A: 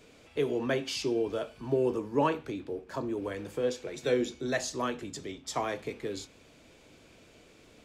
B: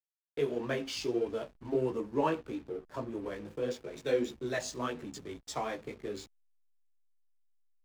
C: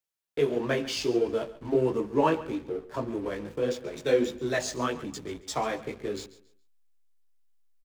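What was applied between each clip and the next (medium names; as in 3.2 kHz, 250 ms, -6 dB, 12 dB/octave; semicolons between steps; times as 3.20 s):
chorus voices 2, 1.5 Hz, delay 16 ms, depth 3 ms; expander -46 dBFS; hysteresis with a dead band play -45 dBFS
feedback delay 138 ms, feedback 27%, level -17 dB; trim +6 dB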